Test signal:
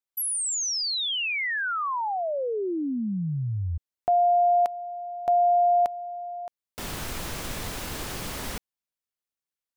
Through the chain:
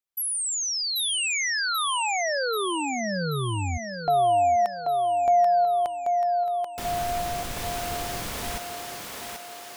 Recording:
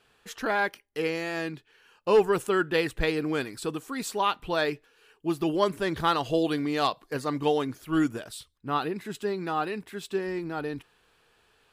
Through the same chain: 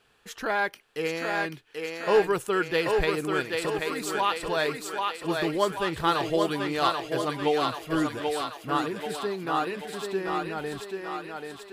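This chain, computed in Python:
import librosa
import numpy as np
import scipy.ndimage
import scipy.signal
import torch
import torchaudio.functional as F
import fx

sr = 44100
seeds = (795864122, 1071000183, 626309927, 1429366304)

y = fx.dynamic_eq(x, sr, hz=250.0, q=1.8, threshold_db=-42.0, ratio=4.0, max_db=-5)
y = fx.echo_thinned(y, sr, ms=785, feedback_pct=60, hz=310.0, wet_db=-3.0)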